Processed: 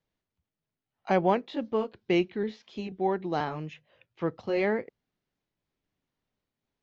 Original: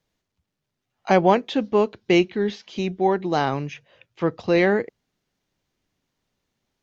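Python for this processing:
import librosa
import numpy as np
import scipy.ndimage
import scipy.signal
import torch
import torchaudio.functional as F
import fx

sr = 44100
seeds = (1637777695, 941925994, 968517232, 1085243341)

y = fx.pitch_trill(x, sr, semitones=1.0, every_ms=486)
y = fx.air_absorb(y, sr, metres=120.0)
y = y * 10.0 ** (-7.0 / 20.0)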